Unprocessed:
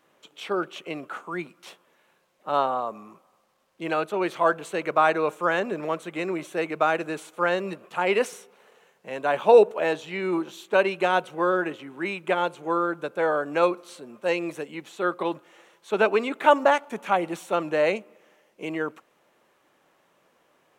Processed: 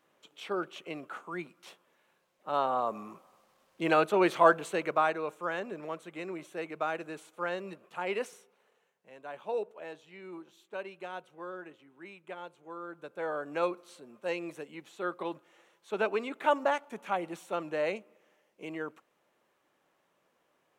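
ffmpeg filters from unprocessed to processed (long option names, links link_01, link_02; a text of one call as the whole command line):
ffmpeg -i in.wav -af "volume=11dB,afade=type=in:start_time=2.6:duration=0.4:silence=0.421697,afade=type=out:start_time=4.34:duration=0.83:silence=0.266073,afade=type=out:start_time=8.12:duration=1.02:silence=0.375837,afade=type=in:start_time=12.76:duration=0.76:silence=0.316228" out.wav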